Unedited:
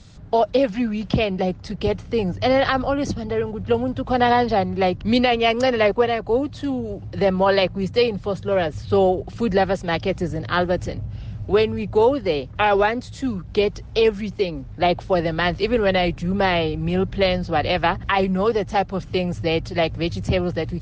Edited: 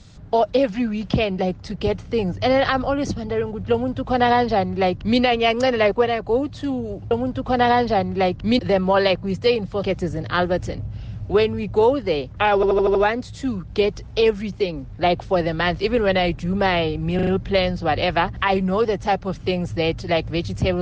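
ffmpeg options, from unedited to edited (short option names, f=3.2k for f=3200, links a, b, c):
-filter_complex "[0:a]asplit=12[a][b][c][d][e][f][g][h][i][j][k][l];[a]atrim=end=7.112[m];[b]atrim=start=3.718:end=5.202[n];[c]atrim=start=7.108:end=8.352[o];[d]atrim=start=10.018:end=12.822[p];[e]atrim=start=12.738:end=12.822[q];[f]atrim=start=12.738:end=12.822[r];[g]atrim=start=12.738:end=12.822[s];[h]atrim=start=12.738:end=12.822[t];[i]atrim=start=12.738:end=16.982[u];[j]atrim=start=16.938:end=16.982[v];[k]atrim=start=16.938:end=16.982[w];[l]atrim=start=16.938[x];[m][n]acrossfade=d=0.004:c1=hsin:c2=hsin[y];[y][o]acrossfade=d=0.004:c1=hsin:c2=hsin[z];[z][p]acrossfade=d=0.004:c1=hsin:c2=hsin[aa];[aa][q]acrossfade=d=0.004:c1=hsin:c2=hsin[ab];[ab][r]acrossfade=d=0.004:c1=hsin:c2=hsin[ac];[ac][s]acrossfade=d=0.004:c1=hsin:c2=hsin[ad];[ad][t]acrossfade=d=0.004:c1=hsin:c2=hsin[ae];[ae][u]acrossfade=d=0.004:c1=hsin:c2=hsin[af];[af][v]acrossfade=d=0.004:c1=hsin:c2=hsin[ag];[ag][w]acrossfade=d=0.004:c1=hsin:c2=hsin[ah];[ah][x]acrossfade=d=0.004:c1=hsin:c2=hsin"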